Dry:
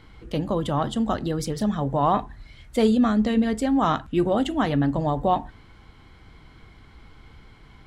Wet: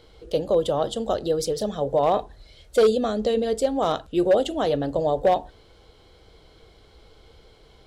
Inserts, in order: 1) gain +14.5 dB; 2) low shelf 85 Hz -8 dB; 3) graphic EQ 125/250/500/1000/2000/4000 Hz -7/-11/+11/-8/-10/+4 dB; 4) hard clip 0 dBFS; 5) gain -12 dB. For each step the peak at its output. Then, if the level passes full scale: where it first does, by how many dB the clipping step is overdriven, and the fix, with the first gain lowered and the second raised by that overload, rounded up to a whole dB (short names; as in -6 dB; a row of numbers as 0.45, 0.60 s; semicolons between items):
+6.0, +5.0, +6.0, 0.0, -12.0 dBFS; step 1, 6.0 dB; step 1 +8.5 dB, step 5 -6 dB